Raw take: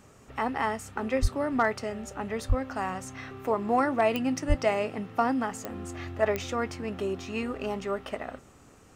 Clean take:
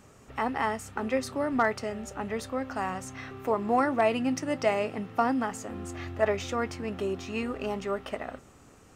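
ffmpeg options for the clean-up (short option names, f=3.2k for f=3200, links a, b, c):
-filter_complex "[0:a]adeclick=t=4,asplit=3[a][b][c];[a]afade=t=out:st=1.21:d=0.02[d];[b]highpass=f=140:w=0.5412,highpass=f=140:w=1.3066,afade=t=in:st=1.21:d=0.02,afade=t=out:st=1.33:d=0.02[e];[c]afade=t=in:st=1.33:d=0.02[f];[d][e][f]amix=inputs=3:normalize=0,asplit=3[g][h][i];[g]afade=t=out:st=2.48:d=0.02[j];[h]highpass=f=140:w=0.5412,highpass=f=140:w=1.3066,afade=t=in:st=2.48:d=0.02,afade=t=out:st=2.6:d=0.02[k];[i]afade=t=in:st=2.6:d=0.02[l];[j][k][l]amix=inputs=3:normalize=0,asplit=3[m][n][o];[m]afade=t=out:st=4.48:d=0.02[p];[n]highpass=f=140:w=0.5412,highpass=f=140:w=1.3066,afade=t=in:st=4.48:d=0.02,afade=t=out:st=4.6:d=0.02[q];[o]afade=t=in:st=4.6:d=0.02[r];[p][q][r]amix=inputs=3:normalize=0"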